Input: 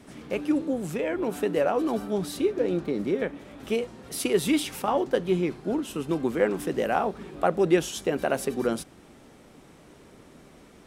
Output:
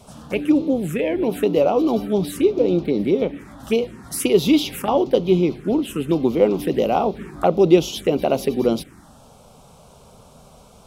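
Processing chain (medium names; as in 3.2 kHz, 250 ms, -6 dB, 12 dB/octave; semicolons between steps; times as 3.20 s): touch-sensitive phaser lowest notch 290 Hz, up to 1.7 kHz, full sweep at -23 dBFS; trim +8.5 dB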